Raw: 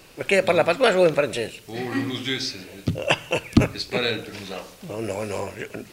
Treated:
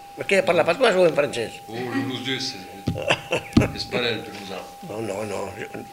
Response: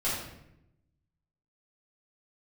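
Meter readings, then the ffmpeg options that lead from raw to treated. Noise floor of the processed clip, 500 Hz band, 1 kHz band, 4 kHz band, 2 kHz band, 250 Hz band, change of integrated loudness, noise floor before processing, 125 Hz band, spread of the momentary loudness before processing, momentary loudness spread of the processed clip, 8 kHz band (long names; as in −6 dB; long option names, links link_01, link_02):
−42 dBFS, +0.5 dB, +1.0 dB, 0.0 dB, 0.0 dB, 0.0 dB, 0.0 dB, −48 dBFS, −0.5 dB, 15 LU, 15 LU, 0.0 dB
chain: -filter_complex "[0:a]bandreject=frequency=50:width_type=h:width=6,bandreject=frequency=100:width_type=h:width=6,bandreject=frequency=150:width_type=h:width=6,aeval=exprs='val(0)+0.01*sin(2*PI*800*n/s)':channel_layout=same,asplit=2[link_01][link_02];[1:a]atrim=start_sample=2205[link_03];[link_02][link_03]afir=irnorm=-1:irlink=0,volume=-29dB[link_04];[link_01][link_04]amix=inputs=2:normalize=0"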